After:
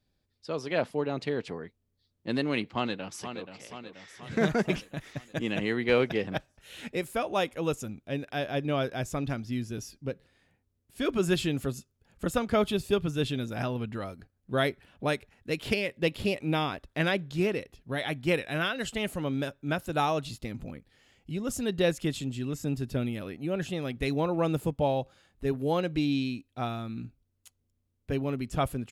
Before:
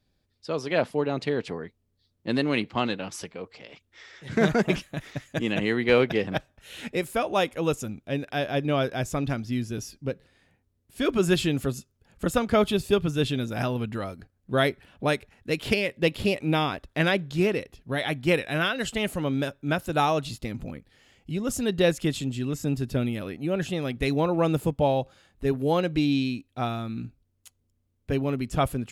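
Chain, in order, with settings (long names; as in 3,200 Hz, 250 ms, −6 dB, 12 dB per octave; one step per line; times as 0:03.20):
0:02.67–0:03.55: delay throw 480 ms, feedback 60%, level −9 dB
0:13.55–0:14.01: high-shelf EQ 8,800 Hz −7 dB
level −4 dB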